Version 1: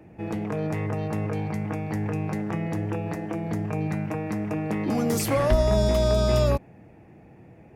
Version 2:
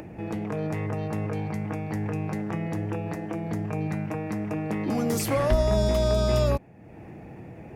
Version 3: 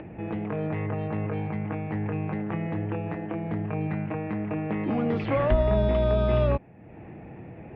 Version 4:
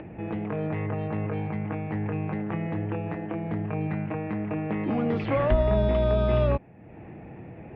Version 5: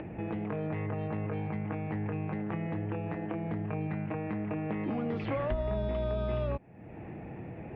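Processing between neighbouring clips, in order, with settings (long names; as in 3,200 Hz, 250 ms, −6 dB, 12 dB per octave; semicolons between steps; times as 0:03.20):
upward compression, threshold −31 dBFS; level −1.5 dB
Butterworth low-pass 3,200 Hz 36 dB per octave
no processing that can be heard
downward compressor 2.5 to 1, threshold −33 dBFS, peak gain reduction 11.5 dB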